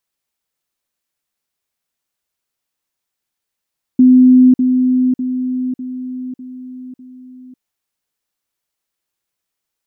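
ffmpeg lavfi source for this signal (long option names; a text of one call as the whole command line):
ffmpeg -f lavfi -i "aevalsrc='pow(10,(-4-6*floor(t/0.6))/20)*sin(2*PI*254*t)*clip(min(mod(t,0.6),0.55-mod(t,0.6))/0.005,0,1)':duration=3.6:sample_rate=44100" out.wav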